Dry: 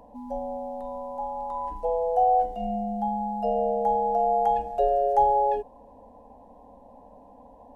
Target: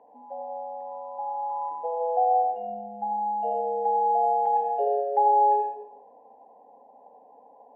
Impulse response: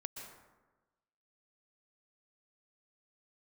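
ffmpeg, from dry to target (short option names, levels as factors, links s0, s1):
-filter_complex "[0:a]highpass=340,equalizer=f=430:t=q:w=4:g=9,equalizer=f=790:t=q:w=4:g=9,equalizer=f=1300:t=q:w=4:g=-6,lowpass=f=2500:w=0.5412,lowpass=f=2500:w=1.3066[s0];[1:a]atrim=start_sample=2205,asetrate=74970,aresample=44100[s1];[s0][s1]afir=irnorm=-1:irlink=0"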